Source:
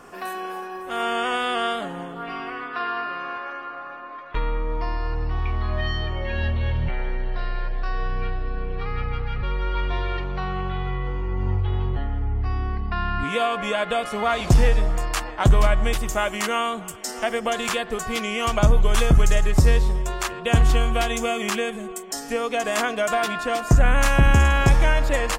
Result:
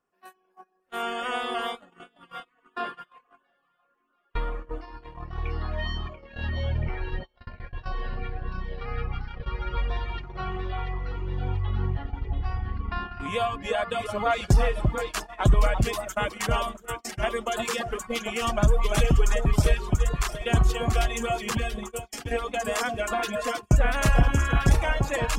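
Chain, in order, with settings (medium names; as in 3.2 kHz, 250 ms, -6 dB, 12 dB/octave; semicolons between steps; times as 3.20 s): on a send: echo whose repeats swap between lows and highs 343 ms, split 1.2 kHz, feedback 74%, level -3 dB; on the sum: reverb removal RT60 1.7 s; gate -28 dBFS, range -32 dB; trim -3.5 dB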